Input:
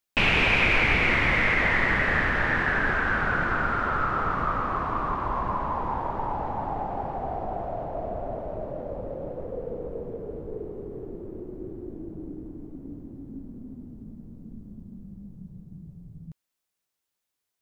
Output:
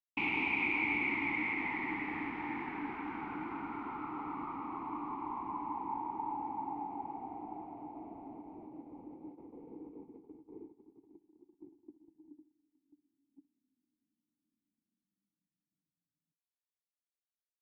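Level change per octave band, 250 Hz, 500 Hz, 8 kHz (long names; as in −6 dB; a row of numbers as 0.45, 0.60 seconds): −7.5 dB, −19.0 dB, can't be measured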